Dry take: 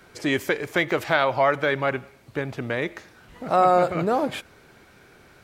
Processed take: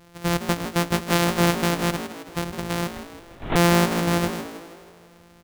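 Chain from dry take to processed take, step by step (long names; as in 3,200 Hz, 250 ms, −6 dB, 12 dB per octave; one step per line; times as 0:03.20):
samples sorted by size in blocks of 256 samples
0:02.92–0:03.56: linear-prediction vocoder at 8 kHz whisper
echo with shifted repeats 160 ms, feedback 52%, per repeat +54 Hz, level −11 dB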